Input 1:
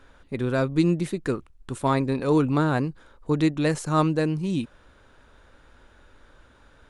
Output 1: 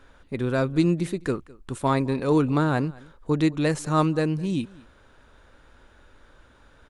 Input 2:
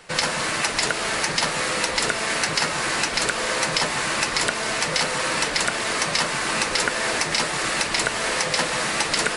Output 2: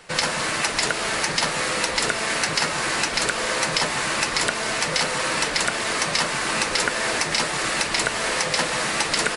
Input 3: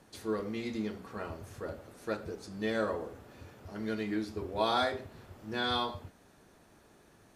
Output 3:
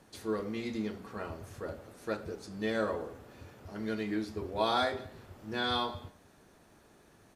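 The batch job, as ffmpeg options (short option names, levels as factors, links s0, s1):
-af "aecho=1:1:208:0.0708"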